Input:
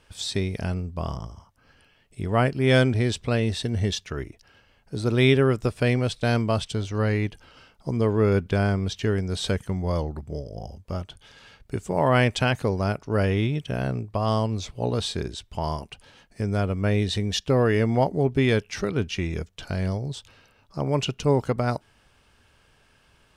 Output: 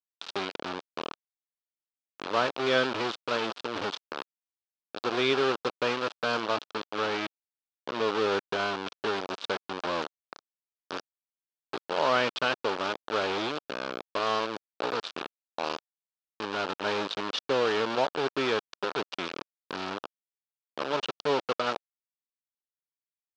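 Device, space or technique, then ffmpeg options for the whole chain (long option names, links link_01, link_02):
hand-held game console: -filter_complex "[0:a]acrusher=bits=3:mix=0:aa=0.000001,highpass=410,equalizer=frequency=700:width_type=q:width=4:gain=-3,equalizer=frequency=1300:width_type=q:width=4:gain=3,equalizer=frequency=2000:width_type=q:width=4:gain=-8,lowpass=frequency=4500:width=0.5412,lowpass=frequency=4500:width=1.3066,asettb=1/sr,asplit=3[link_01][link_02][link_03];[link_01]atrim=end=6.414[link_04];[link_02]atrim=start=6.41:end=8.08,asetpts=PTS-STARTPTS,afade=type=in:duration=0.004:curve=qsin,afade=type=out:start_time=1.666:duration=0.004:curve=qsin,lowpass=8600[link_05];[link_03]atrim=start=8.076[link_06];[link_04][link_05]acrossfade=duration=0.004:curve1=hsin:curve2=qsin[link_07];[link_07][link_06]acrossfade=duration=0.004:curve1=qsin:curve2=hsin,volume=-2.5dB"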